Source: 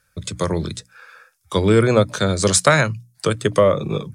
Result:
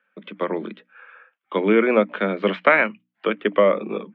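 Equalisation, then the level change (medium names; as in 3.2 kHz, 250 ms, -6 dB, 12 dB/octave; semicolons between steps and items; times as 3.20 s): dynamic bell 2.2 kHz, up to +6 dB, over -38 dBFS, Q 2.8; Chebyshev band-pass 200–3100 Hz, order 5; -1.0 dB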